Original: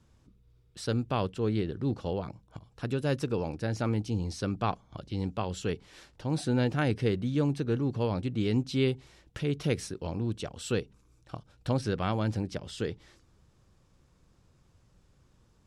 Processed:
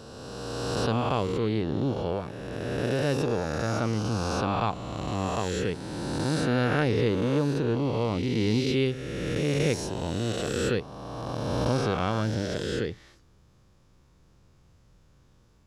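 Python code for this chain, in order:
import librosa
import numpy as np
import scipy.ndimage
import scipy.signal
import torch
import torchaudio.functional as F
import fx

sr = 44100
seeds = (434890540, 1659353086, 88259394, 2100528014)

y = fx.spec_swells(x, sr, rise_s=2.46)
y = fx.peak_eq(y, sr, hz=8500.0, db=-6.0, octaves=0.25)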